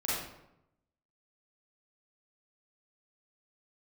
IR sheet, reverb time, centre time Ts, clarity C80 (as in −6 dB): 0.85 s, 76 ms, 2.5 dB